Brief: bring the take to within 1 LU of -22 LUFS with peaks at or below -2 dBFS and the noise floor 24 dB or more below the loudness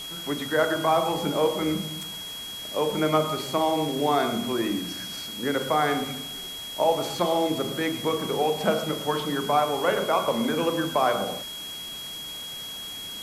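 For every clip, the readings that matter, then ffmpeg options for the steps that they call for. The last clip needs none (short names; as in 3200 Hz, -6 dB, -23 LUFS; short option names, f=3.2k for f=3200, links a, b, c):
steady tone 3300 Hz; tone level -35 dBFS; noise floor -37 dBFS; noise floor target -50 dBFS; loudness -26.0 LUFS; peak -8.5 dBFS; loudness target -22.0 LUFS
-> -af "bandreject=f=3.3k:w=30"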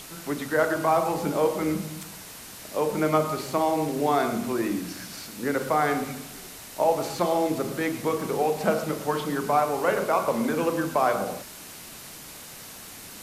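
steady tone none; noise floor -43 dBFS; noise floor target -50 dBFS
-> -af "afftdn=nr=7:nf=-43"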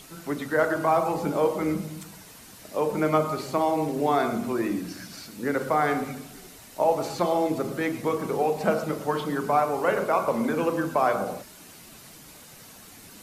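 noise floor -48 dBFS; noise floor target -50 dBFS
-> -af "afftdn=nr=6:nf=-48"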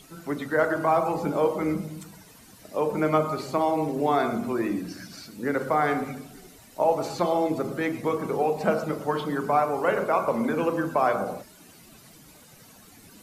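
noise floor -52 dBFS; loudness -26.0 LUFS; peak -9.0 dBFS; loudness target -22.0 LUFS
-> -af "volume=4dB"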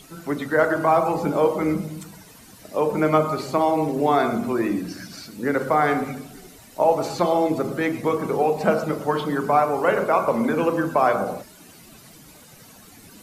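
loudness -22.0 LUFS; peak -5.0 dBFS; noise floor -48 dBFS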